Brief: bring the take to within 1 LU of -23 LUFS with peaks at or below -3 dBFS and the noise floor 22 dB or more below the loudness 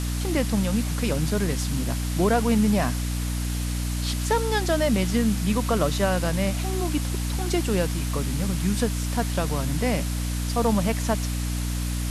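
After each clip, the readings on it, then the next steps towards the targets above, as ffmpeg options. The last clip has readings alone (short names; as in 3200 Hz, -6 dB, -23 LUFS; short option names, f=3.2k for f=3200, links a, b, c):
hum 60 Hz; harmonics up to 300 Hz; hum level -24 dBFS; noise floor -27 dBFS; noise floor target -47 dBFS; loudness -25.0 LUFS; peak -9.5 dBFS; loudness target -23.0 LUFS
-> -af "bandreject=f=60:t=h:w=4,bandreject=f=120:t=h:w=4,bandreject=f=180:t=h:w=4,bandreject=f=240:t=h:w=4,bandreject=f=300:t=h:w=4"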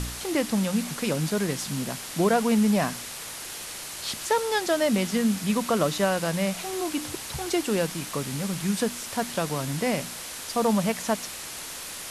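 hum none; noise floor -38 dBFS; noise floor target -49 dBFS
-> -af "afftdn=nr=11:nf=-38"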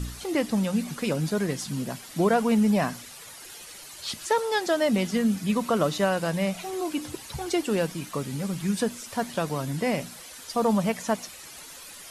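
noise floor -44 dBFS; noise floor target -49 dBFS
-> -af "afftdn=nr=6:nf=-44"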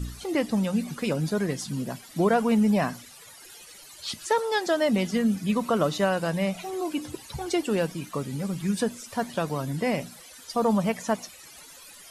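noise floor -48 dBFS; noise floor target -49 dBFS
-> -af "afftdn=nr=6:nf=-48"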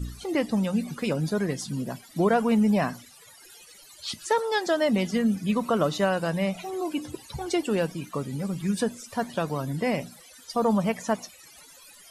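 noise floor -51 dBFS; loudness -27.0 LUFS; peak -10.5 dBFS; loudness target -23.0 LUFS
-> -af "volume=4dB"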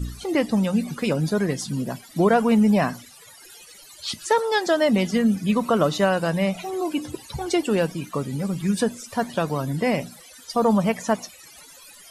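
loudness -23.0 LUFS; peak -6.5 dBFS; noise floor -47 dBFS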